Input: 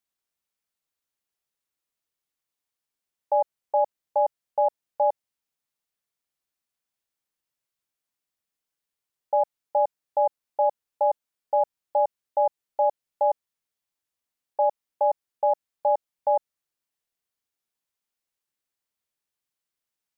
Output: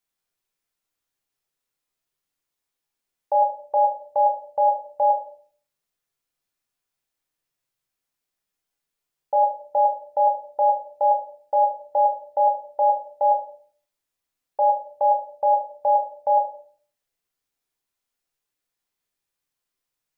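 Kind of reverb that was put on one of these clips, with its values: shoebox room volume 49 m³, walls mixed, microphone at 0.56 m; gain +1 dB

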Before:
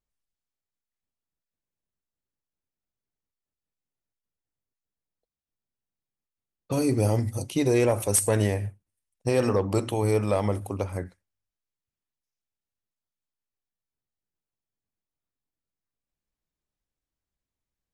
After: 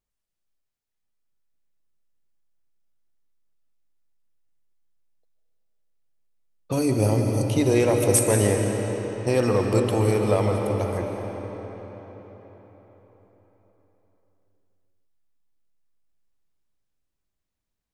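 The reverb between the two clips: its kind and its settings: digital reverb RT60 4.7 s, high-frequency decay 0.75×, pre-delay 0.1 s, DRR 2 dB; gain +1.5 dB

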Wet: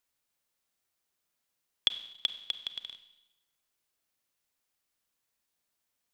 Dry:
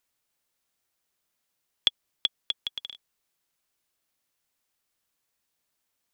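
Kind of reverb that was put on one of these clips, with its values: Schroeder reverb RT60 0.95 s, combs from 31 ms, DRR 10.5 dB; gain -3.5 dB

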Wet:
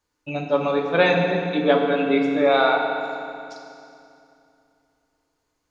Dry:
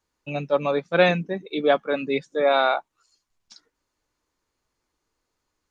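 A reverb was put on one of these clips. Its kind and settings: FDN reverb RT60 2.6 s, low-frequency decay 1.3×, high-frequency decay 0.85×, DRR 0.5 dB

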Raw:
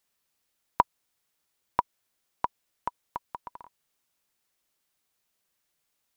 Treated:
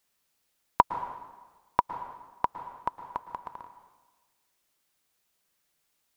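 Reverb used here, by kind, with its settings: plate-style reverb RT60 1.3 s, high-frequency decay 0.9×, pre-delay 0.1 s, DRR 10 dB; gain +2 dB

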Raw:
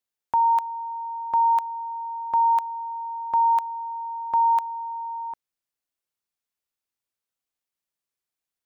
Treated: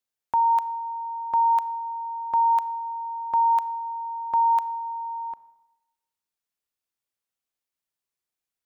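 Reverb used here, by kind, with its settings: Schroeder reverb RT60 0.97 s, combs from 28 ms, DRR 17 dB; gain -1 dB

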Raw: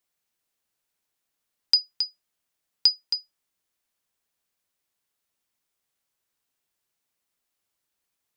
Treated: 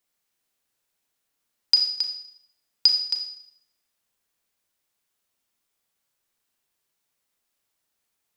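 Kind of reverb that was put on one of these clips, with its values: Schroeder reverb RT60 0.72 s, combs from 27 ms, DRR 4.5 dB; gain +1.5 dB

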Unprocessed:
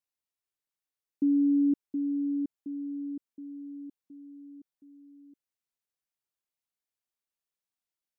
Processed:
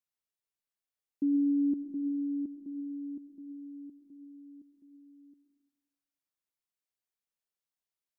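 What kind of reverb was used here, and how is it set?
digital reverb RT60 1.1 s, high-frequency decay 0.95×, pre-delay 55 ms, DRR 9 dB; gain -3.5 dB

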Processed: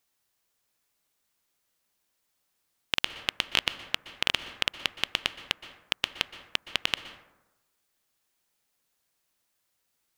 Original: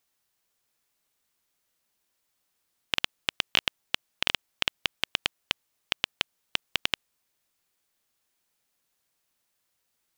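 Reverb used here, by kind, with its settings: plate-style reverb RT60 1 s, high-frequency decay 0.4×, pre-delay 0.11 s, DRR 12 dB

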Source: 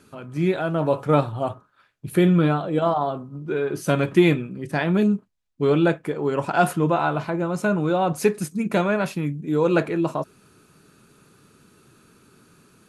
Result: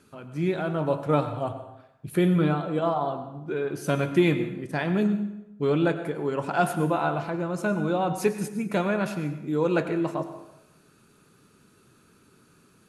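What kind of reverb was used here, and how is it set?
plate-style reverb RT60 0.92 s, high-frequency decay 0.75×, pre-delay 80 ms, DRR 10 dB; gain -4.5 dB

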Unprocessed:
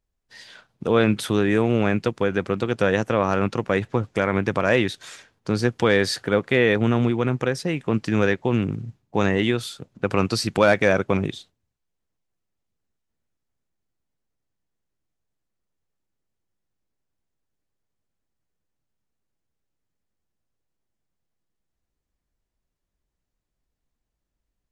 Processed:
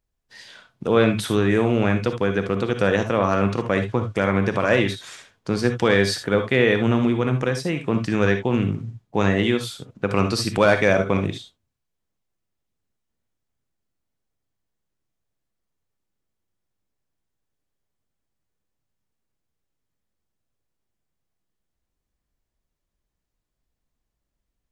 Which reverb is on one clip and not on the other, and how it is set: non-linear reverb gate 90 ms rising, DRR 6.5 dB

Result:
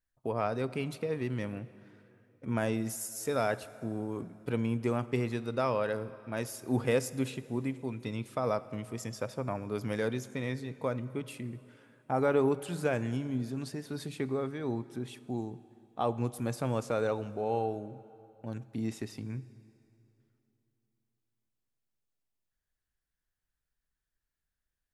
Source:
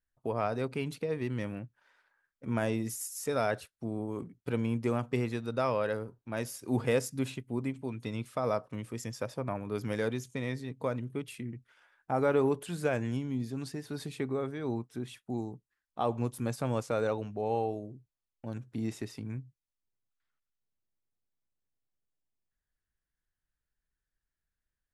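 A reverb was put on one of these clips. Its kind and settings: plate-style reverb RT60 3 s, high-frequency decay 0.8×, DRR 16 dB

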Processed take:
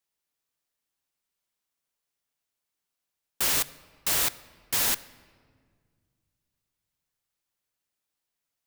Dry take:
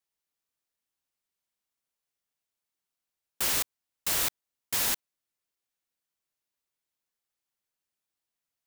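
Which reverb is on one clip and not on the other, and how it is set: shoebox room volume 2800 m³, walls mixed, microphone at 0.34 m; gain +2.5 dB

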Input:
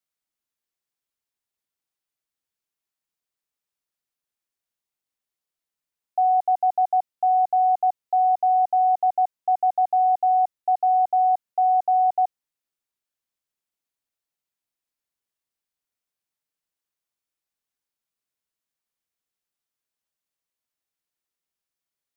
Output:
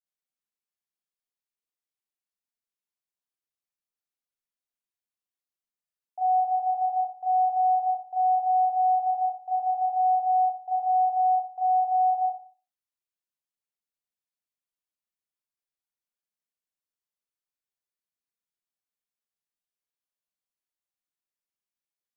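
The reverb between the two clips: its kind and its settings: Schroeder reverb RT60 0.39 s, combs from 31 ms, DRR -5.5 dB; gain -15 dB

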